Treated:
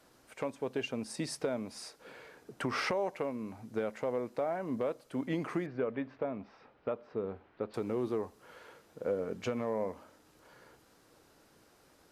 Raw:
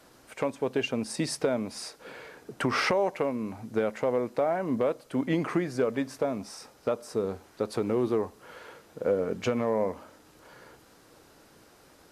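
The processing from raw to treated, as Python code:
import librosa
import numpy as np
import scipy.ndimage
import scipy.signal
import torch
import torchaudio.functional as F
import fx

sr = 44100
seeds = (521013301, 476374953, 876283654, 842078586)

y = fx.lowpass(x, sr, hz=3000.0, slope=24, at=(5.66, 7.74))
y = y * librosa.db_to_amplitude(-7.0)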